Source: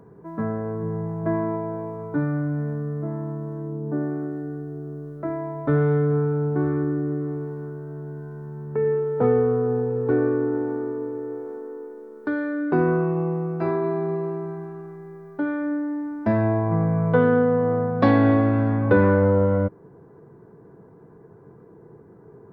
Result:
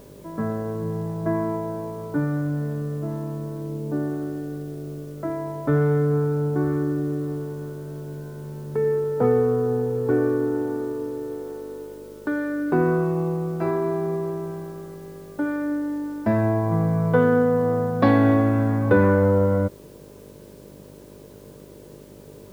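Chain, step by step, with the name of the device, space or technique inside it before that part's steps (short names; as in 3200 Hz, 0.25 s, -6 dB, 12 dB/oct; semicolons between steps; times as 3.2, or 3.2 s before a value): video cassette with head-switching buzz (buzz 50 Hz, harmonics 12, -47 dBFS 0 dB/oct; white noise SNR 33 dB)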